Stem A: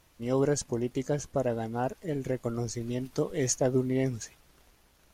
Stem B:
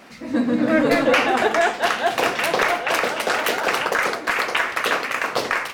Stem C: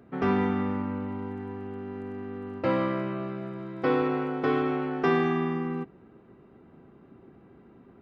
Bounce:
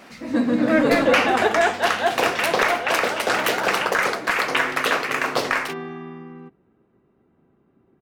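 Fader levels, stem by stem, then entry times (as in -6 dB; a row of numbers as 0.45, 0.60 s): off, 0.0 dB, -8.5 dB; off, 0.00 s, 0.65 s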